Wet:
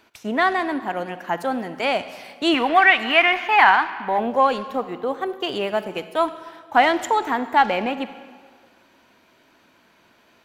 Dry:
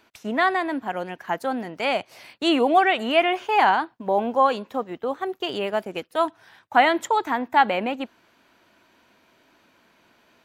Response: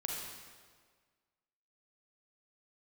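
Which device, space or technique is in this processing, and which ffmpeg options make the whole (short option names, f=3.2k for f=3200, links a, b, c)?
saturated reverb return: -filter_complex "[0:a]asplit=2[a][b];[1:a]atrim=start_sample=2205[c];[b][c]afir=irnorm=-1:irlink=0,asoftclip=type=tanh:threshold=-18.5dB,volume=-9dB[d];[a][d]amix=inputs=2:normalize=0,asettb=1/sr,asplit=3[e][f][g];[e]atrim=end=2.544[h];[f]atrim=start=2.54:end=4.19,asetpts=PTS-STARTPTS,afade=t=in:d=0.004:c=qsin,afade=t=out:st=1.646:d=0.004:c=qsin,equalizer=f=125:t=o:w=1:g=-10,equalizer=f=500:t=o:w=1:g=-8,equalizer=f=1k:t=o:w=1:g=4,equalizer=f=2k:t=o:w=1:g=9,equalizer=f=8k:t=o:w=1:g=-5[i];[g]atrim=start=4.186[j];[h][i]acrossfade=d=0.004:c1=hsin:c2=qsin[k];[k][j]acrossfade=d=0.004:c1=qsin:c2=hsin"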